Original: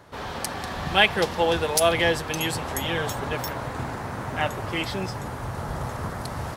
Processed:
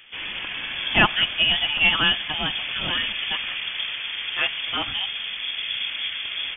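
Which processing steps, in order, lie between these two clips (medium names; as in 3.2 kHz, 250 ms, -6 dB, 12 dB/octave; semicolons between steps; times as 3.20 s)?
frequency inversion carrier 3.4 kHz; dynamic bell 440 Hz, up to -5 dB, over -49 dBFS, Q 2.3; trim +1.5 dB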